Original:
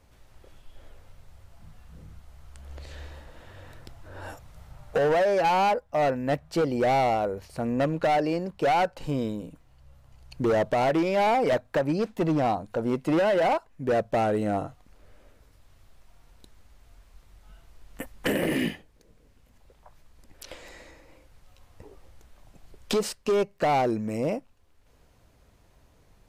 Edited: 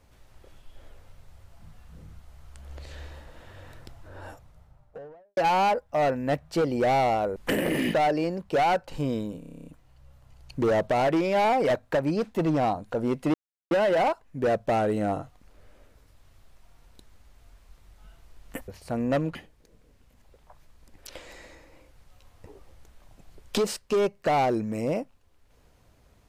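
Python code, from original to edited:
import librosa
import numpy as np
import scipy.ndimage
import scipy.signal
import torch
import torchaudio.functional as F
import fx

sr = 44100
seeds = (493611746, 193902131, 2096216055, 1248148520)

y = fx.studio_fade_out(x, sr, start_s=3.77, length_s=1.6)
y = fx.edit(y, sr, fx.swap(start_s=7.36, length_s=0.67, other_s=18.13, other_length_s=0.58),
    fx.stutter(start_s=9.48, slice_s=0.03, count=10),
    fx.insert_silence(at_s=13.16, length_s=0.37), tone=tone)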